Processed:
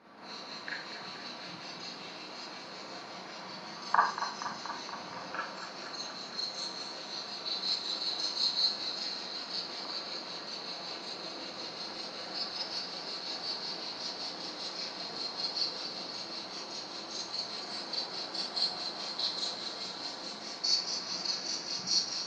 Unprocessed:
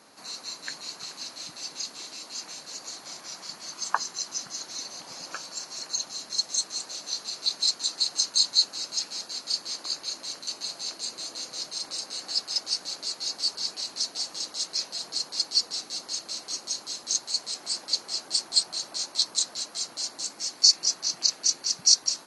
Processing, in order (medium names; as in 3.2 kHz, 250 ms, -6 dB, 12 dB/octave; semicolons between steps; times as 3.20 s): distance through air 330 m; Schroeder reverb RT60 0.4 s, combs from 33 ms, DRR -5.5 dB; modulated delay 237 ms, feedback 74%, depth 59 cents, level -11 dB; trim -2 dB